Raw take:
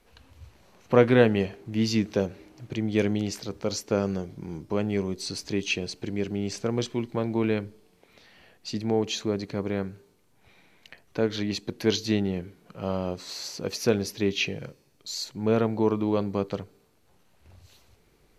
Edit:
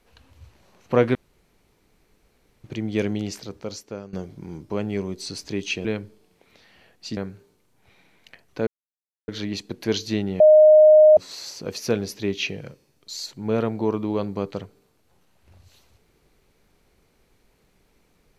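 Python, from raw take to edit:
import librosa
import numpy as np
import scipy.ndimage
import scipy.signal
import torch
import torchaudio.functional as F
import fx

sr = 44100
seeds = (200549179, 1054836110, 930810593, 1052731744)

y = fx.edit(x, sr, fx.room_tone_fill(start_s=1.15, length_s=1.49),
    fx.fade_out_to(start_s=3.33, length_s=0.8, floor_db=-17.5),
    fx.cut(start_s=5.85, length_s=1.62),
    fx.cut(start_s=8.79, length_s=0.97),
    fx.insert_silence(at_s=11.26, length_s=0.61),
    fx.bleep(start_s=12.38, length_s=0.77, hz=616.0, db=-8.0), tone=tone)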